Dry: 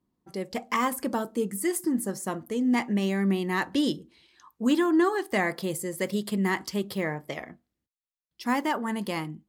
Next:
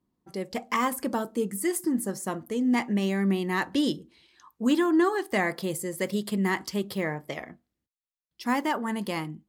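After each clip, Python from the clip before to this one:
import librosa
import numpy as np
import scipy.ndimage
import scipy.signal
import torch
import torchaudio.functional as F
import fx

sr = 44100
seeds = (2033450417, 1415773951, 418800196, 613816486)

y = x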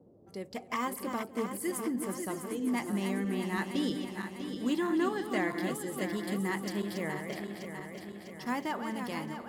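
y = fx.reverse_delay_fb(x, sr, ms=325, feedback_pct=76, wet_db=-7.0)
y = y + 10.0 ** (-18.0 / 20.0) * np.pad(y, (int(243 * sr / 1000.0), 0))[:len(y)]
y = fx.dmg_noise_band(y, sr, seeds[0], low_hz=76.0, high_hz=520.0, level_db=-52.0)
y = y * 10.0 ** (-7.5 / 20.0)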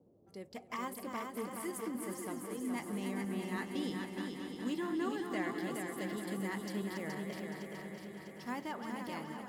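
y = fx.echo_feedback(x, sr, ms=422, feedback_pct=40, wet_db=-5.0)
y = y * 10.0 ** (-7.0 / 20.0)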